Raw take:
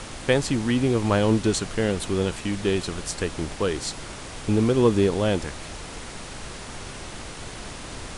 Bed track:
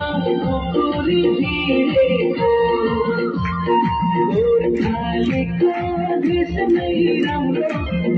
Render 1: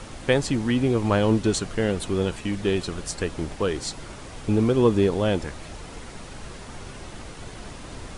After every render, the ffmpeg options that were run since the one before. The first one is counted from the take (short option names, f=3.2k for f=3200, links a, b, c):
-af "afftdn=nr=6:nf=-38"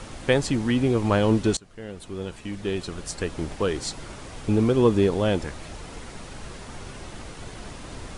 -filter_complex "[0:a]asplit=2[a][b];[a]atrim=end=1.57,asetpts=PTS-STARTPTS,afade=t=out:st=1.566:d=0.004:c=hsin:silence=0.0668344[c];[b]atrim=start=1.57,asetpts=PTS-STARTPTS,afade=t=in:d=1.96:silence=0.0668344[d];[c][d]concat=n=2:v=0:a=1"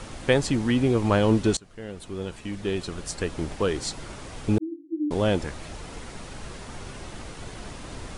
-filter_complex "[0:a]asettb=1/sr,asplit=3[a][b][c];[a]atrim=end=4.584[d];[b]atrim=start=4.58:end=5.11,asetpts=PTS-STARTPTS,afade=t=in:d=0.004:c=qsin,afade=t=out:st=0.526:d=0.004:c=qsin,asuperpass=centerf=310:order=20:qfactor=5.7[e];[c]atrim=start=5.106[f];[d][e]acrossfade=d=0.004:c1=hsin:c2=qsin[g];[g][f]acrossfade=d=0.004:c1=qsin:c2=hsin"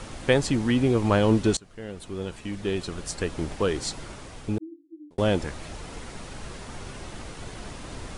-filter_complex "[0:a]asplit=2[a][b];[a]atrim=end=5.18,asetpts=PTS-STARTPTS,afade=t=out:st=3.95:d=1.23[c];[b]atrim=start=5.18,asetpts=PTS-STARTPTS,afade=t=in:d=0.004:c=hsin[d];[c][d]concat=n=2:v=0:a=1"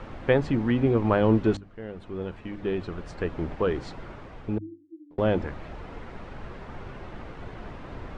-af "lowpass=2k,bandreject=f=50:t=h:w=6,bandreject=f=100:t=h:w=6,bandreject=f=150:t=h:w=6,bandreject=f=200:t=h:w=6,bandreject=f=250:t=h:w=6,bandreject=f=300:t=h:w=6"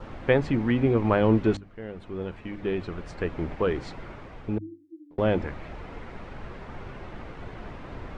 -af "adynamicequalizer=threshold=0.002:dfrequency=2200:dqfactor=3.3:tfrequency=2200:tqfactor=3.3:attack=5:release=100:ratio=0.375:range=2:mode=boostabove:tftype=bell"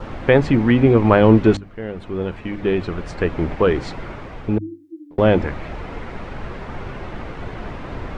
-af "volume=9dB,alimiter=limit=-1dB:level=0:latency=1"